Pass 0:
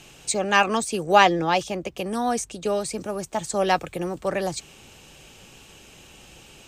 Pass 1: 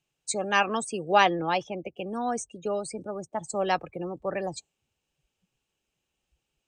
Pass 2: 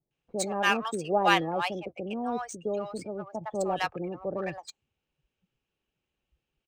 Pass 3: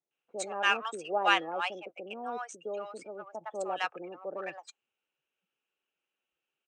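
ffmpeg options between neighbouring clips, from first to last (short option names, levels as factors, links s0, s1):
-af "afftdn=nr=29:nf=-33,lowshelf=f=190:g=-3,volume=0.596"
-filter_complex "[0:a]adynamicsmooth=sensitivity=6.5:basefreq=3900,acrossover=split=780[s0][s1];[s1]adelay=110[s2];[s0][s2]amix=inputs=2:normalize=0"
-af "highpass=400,equalizer=f=1400:t=q:w=4:g=6,equalizer=f=2700:t=q:w=4:g=5,equalizer=f=4600:t=q:w=4:g=-7,lowpass=f=8600:w=0.5412,lowpass=f=8600:w=1.3066,volume=0.631"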